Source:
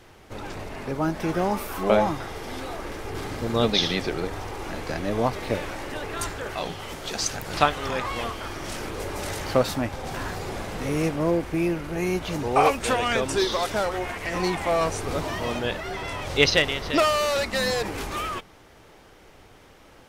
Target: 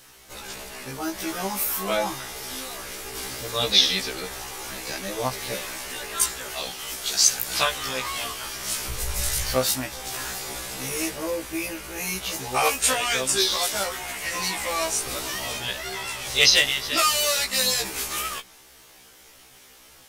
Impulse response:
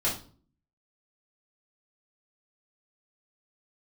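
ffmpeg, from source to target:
-filter_complex "[0:a]asplit=3[link_01][link_02][link_03];[link_01]afade=type=out:start_time=8.88:duration=0.02[link_04];[link_02]asubboost=boost=11.5:cutoff=84,afade=type=in:start_time=8.88:duration=0.02,afade=type=out:start_time=9.54:duration=0.02[link_05];[link_03]afade=type=in:start_time=9.54:duration=0.02[link_06];[link_04][link_05][link_06]amix=inputs=3:normalize=0,crystalizer=i=9:c=0,afftfilt=real='re*1.73*eq(mod(b,3),0)':imag='im*1.73*eq(mod(b,3),0)':win_size=2048:overlap=0.75,volume=-5.5dB"

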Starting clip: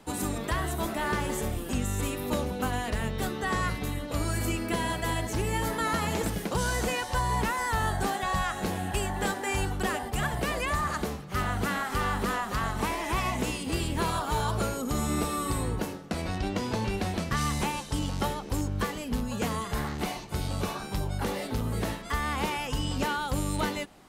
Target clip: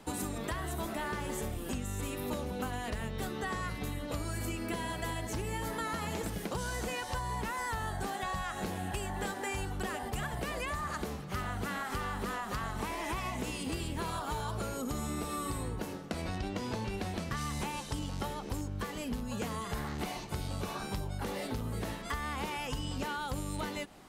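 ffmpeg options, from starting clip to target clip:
ffmpeg -i in.wav -af "acompressor=threshold=-33dB:ratio=6" out.wav

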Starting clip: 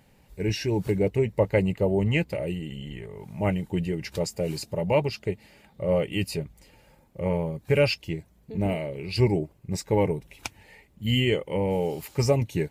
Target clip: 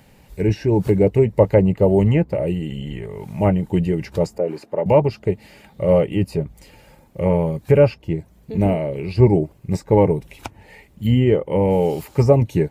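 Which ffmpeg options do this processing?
ffmpeg -i in.wav -filter_complex "[0:a]asettb=1/sr,asplit=3[link_01][link_02][link_03];[link_01]atrim=end=4.384[link_04];[link_02]atrim=start=4.38:end=4.86,asetpts=PTS-STARTPTS,afade=type=in:duration=0.004:curve=qsin,afade=type=out:start_time=0.476:duration=0.004:curve=qsin,acrossover=split=240 2100:gain=0.0794 1 0.0891[link_05][link_06][link_07];[link_05][link_06][link_07]amix=inputs=3:normalize=0[link_08];[link_03]atrim=start=4.856[link_09];[link_04][link_08]acrossfade=duration=0.004:curve1=hsin:curve2=qsin[link_10];[link_10][link_09]acrossfade=duration=0.004:curve1=qsin:curve2=hsin,acrossover=split=860|1300[link_11][link_12][link_13];[link_13]acompressor=threshold=-49dB:ratio=6[link_14];[link_11][link_12][link_14]amix=inputs=3:normalize=0,volume=8.5dB" out.wav

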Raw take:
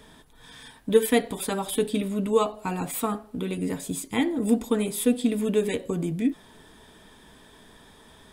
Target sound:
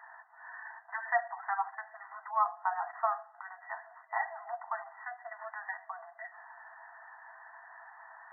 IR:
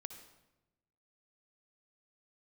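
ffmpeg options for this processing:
-filter_complex "[0:a]afftfilt=real='re*between(b*sr/4096,650,2000)':imag='im*between(b*sr/4096,650,2000)':win_size=4096:overlap=0.75,asplit=2[link_01][link_02];[link_02]acompressor=threshold=-47dB:ratio=6,volume=-0.5dB[link_03];[link_01][link_03]amix=inputs=2:normalize=0"

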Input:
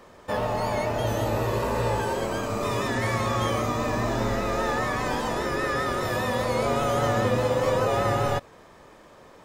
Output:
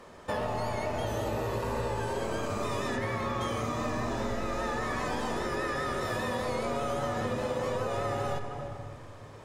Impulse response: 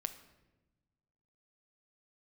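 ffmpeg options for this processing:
-filter_complex "[0:a]asettb=1/sr,asplit=3[link_01][link_02][link_03];[link_01]atrim=end=2.964[link_04];[link_02]atrim=start=2.96:end=3.41,asetpts=PTS-STARTPTS,afade=type=in:duration=0.004:curve=qsin,afade=type=out:start_time=0.446:duration=0.004:curve=qsin,equalizer=frequency=7800:width_type=o:width=1.4:gain=-9[link_05];[link_03]atrim=start=3.406[link_06];[link_04][link_05]acrossfade=duration=0.004:curve1=hsin:curve2=qsin[link_07];[link_07][link_06]acrossfade=duration=0.004:curve1=qsin:curve2=hsin[link_08];[1:a]atrim=start_sample=2205,asetrate=22932,aresample=44100[link_09];[link_08][link_09]afir=irnorm=-1:irlink=0,acompressor=threshold=-26dB:ratio=6,volume=-2.5dB"

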